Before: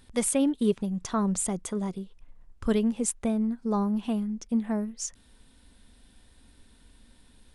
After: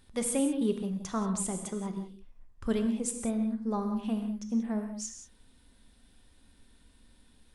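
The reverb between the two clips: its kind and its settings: non-linear reverb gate 0.21 s flat, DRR 5 dB; gain -5 dB

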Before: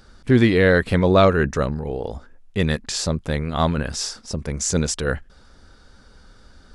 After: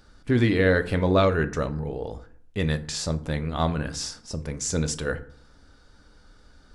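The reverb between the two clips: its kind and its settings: FDN reverb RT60 0.53 s, low-frequency decay 1.3×, high-frequency decay 0.6×, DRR 9 dB; gain -5.5 dB

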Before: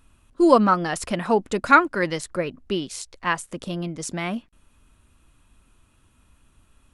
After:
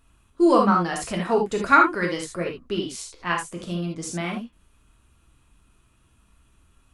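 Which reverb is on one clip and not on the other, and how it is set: non-linear reverb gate 0.1 s flat, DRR 0 dB; gain -4 dB

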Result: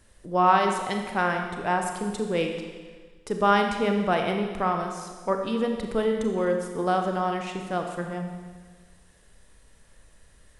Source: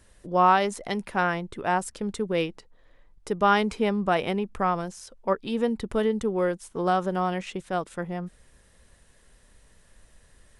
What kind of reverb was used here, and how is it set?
Schroeder reverb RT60 1.5 s, combs from 28 ms, DRR 3.5 dB; gain -1 dB

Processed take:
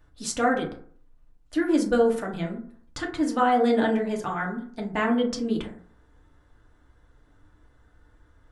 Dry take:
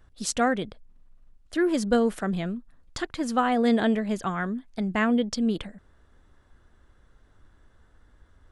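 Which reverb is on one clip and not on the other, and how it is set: FDN reverb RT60 0.52 s, low-frequency decay 1×, high-frequency decay 0.4×, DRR -1 dB; gain -3 dB

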